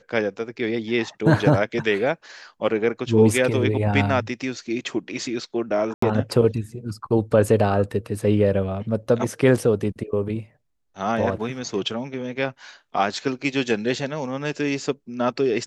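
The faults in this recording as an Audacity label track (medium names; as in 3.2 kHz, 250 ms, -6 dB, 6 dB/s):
5.940000	6.020000	dropout 84 ms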